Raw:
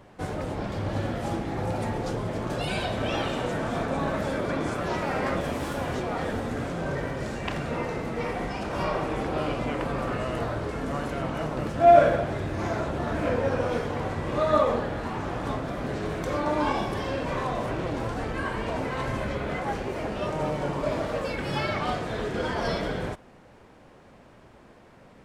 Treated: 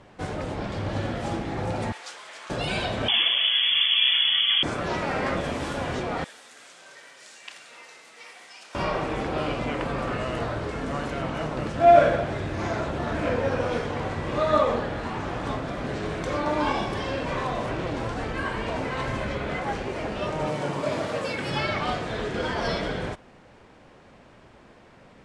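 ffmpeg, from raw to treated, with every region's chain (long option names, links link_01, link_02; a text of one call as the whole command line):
ffmpeg -i in.wav -filter_complex "[0:a]asettb=1/sr,asplit=3[link_01][link_02][link_03];[link_01]atrim=end=1.924[link_04];[link_02]atrim=start=1.92:end=2.5,asetpts=PTS-STARTPTS,afade=type=in:duration=0.004:curve=qsin,afade=type=out:start_time=0.576:duration=0.004:curve=qsin,highpass=1500,equalizer=frequency=8900:width=0.98:gain=3.5[link_05];[link_03]atrim=start=2.496[link_06];[link_04][link_05]acrossfade=duration=0.004:curve1=hsin:curve2=qsin[link_07];[link_07][link_06]acrossfade=duration=0.004:curve1=qsin:curve2=hsin,asettb=1/sr,asplit=3[link_08][link_09][link_10];[link_08]atrim=end=3.084[link_11];[link_09]atrim=start=3.08:end=4.63,asetpts=PTS-STARTPTS,afade=type=in:duration=0.004:curve=qsin,afade=type=out:start_time=1.546:duration=0.004:curve=qsin,lowshelf=frequency=190:gain=9,lowpass=frequency=3000:width_type=q:width=0.5098,lowpass=frequency=3000:width_type=q:width=0.6013,lowpass=frequency=3000:width_type=q:width=0.9,lowpass=frequency=3000:width_type=q:width=2.563,afreqshift=-3500[link_12];[link_10]atrim=start=4.626[link_13];[link_11][link_12]acrossfade=duration=0.004:curve1=hsin:curve2=qsin[link_14];[link_14][link_13]acrossfade=duration=0.004:curve1=qsin:curve2=hsin,asettb=1/sr,asplit=3[link_15][link_16][link_17];[link_15]atrim=end=6.244[link_18];[link_16]atrim=start=6.24:end=8.75,asetpts=PTS-STARTPTS,afade=type=in:duration=0.004:curve=qsin,afade=type=out:start_time=2.506:duration=0.004:curve=qsin,highpass=frequency=240:poles=1,aderivative[link_19];[link_17]atrim=start=8.746[link_20];[link_18][link_19]acrossfade=duration=0.004:curve1=hsin:curve2=qsin[link_21];[link_21][link_20]acrossfade=duration=0.004:curve1=qsin:curve2=hsin,asettb=1/sr,asplit=3[link_22][link_23][link_24];[link_22]atrim=end=20.474[link_25];[link_23]atrim=start=20.47:end=21.5,asetpts=PTS-STARTPTS,afade=type=in:duration=0.004:curve=qsin,afade=type=out:start_time=1.026:duration=0.004:curve=qsin,highpass=frequency=88:width=0.5412,highpass=frequency=88:width=1.3066,highshelf=frequency=9300:gain=11[link_26];[link_24]atrim=start=21.496[link_27];[link_25][link_26]acrossfade=duration=0.004:curve1=hsin:curve2=qsin[link_28];[link_28][link_27]acrossfade=duration=0.004:curve1=qsin:curve2=hsin,lowpass=frequency=9800:width=0.5412,lowpass=frequency=9800:width=1.3066,equalizer=frequency=3100:width_type=o:width=2.1:gain=3.5" out.wav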